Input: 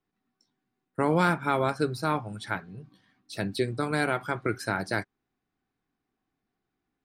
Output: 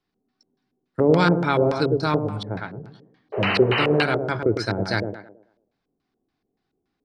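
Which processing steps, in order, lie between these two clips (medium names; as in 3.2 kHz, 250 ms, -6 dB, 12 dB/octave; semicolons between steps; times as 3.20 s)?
tape echo 107 ms, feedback 43%, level -4 dB, low-pass 1.7 kHz; painted sound noise, 3.32–4.03 s, 370–3100 Hz -27 dBFS; LFO low-pass square 3.5 Hz 480–4700 Hz; dynamic bell 100 Hz, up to +6 dB, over -44 dBFS, Q 1.2; trim +3 dB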